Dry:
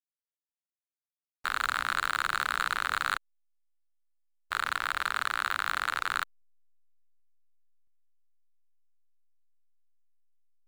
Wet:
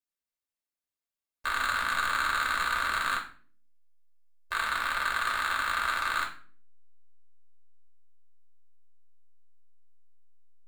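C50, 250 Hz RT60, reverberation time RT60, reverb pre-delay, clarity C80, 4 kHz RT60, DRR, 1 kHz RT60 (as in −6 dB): 10.0 dB, 0.70 s, 0.45 s, 3 ms, 15.0 dB, 0.35 s, −1.5 dB, 0.40 s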